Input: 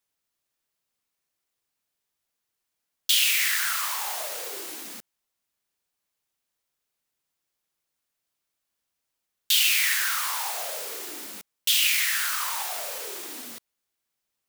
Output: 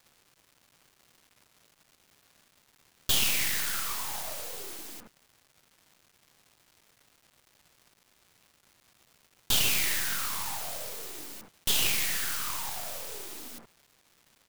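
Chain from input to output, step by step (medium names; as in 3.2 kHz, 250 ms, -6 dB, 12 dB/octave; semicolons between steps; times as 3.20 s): bands offset in time highs, lows 70 ms, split 1.7 kHz; half-wave rectifier; crackle 590 per s -49 dBFS; peaking EQ 130 Hz +4.5 dB 1.5 oct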